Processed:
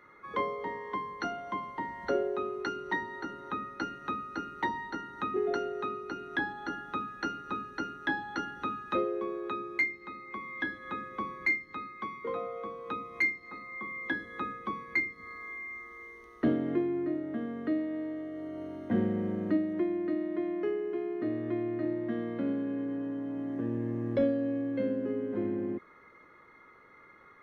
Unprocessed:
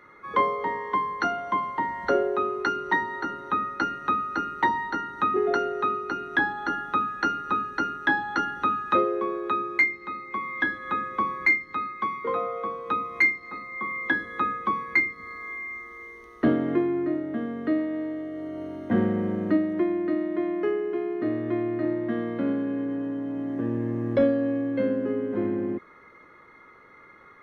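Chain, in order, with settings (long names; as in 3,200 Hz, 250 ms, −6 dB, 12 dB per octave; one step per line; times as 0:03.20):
dynamic equaliser 1,200 Hz, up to −6 dB, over −38 dBFS, Q 0.99
level −5 dB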